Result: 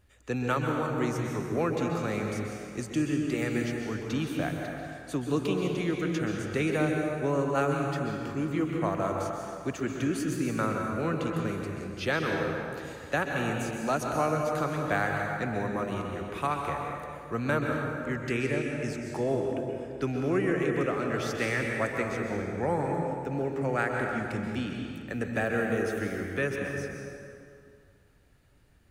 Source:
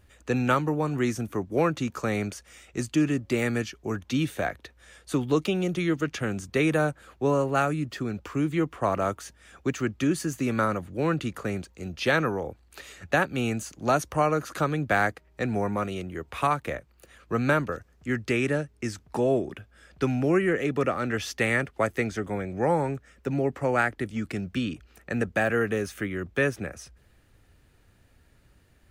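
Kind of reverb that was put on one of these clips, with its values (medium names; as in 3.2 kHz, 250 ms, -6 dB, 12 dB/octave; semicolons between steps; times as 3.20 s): plate-style reverb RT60 2.4 s, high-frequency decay 0.65×, pre-delay 115 ms, DRR 1 dB; trim -5.5 dB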